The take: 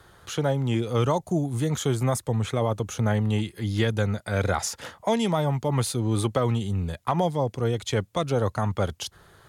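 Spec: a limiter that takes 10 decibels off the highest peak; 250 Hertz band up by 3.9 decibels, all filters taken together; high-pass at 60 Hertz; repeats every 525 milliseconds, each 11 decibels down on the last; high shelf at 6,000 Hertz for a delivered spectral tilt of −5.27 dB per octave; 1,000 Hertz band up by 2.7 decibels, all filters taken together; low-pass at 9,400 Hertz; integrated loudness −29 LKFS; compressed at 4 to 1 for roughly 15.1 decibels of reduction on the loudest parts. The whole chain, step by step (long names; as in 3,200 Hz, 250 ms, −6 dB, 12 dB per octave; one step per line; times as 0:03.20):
high-pass filter 60 Hz
low-pass filter 9,400 Hz
parametric band 250 Hz +5 dB
parametric band 1,000 Hz +3 dB
high-shelf EQ 6,000 Hz +5.5 dB
downward compressor 4 to 1, threshold −36 dBFS
brickwall limiter −30 dBFS
repeating echo 525 ms, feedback 28%, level −11 dB
level +10.5 dB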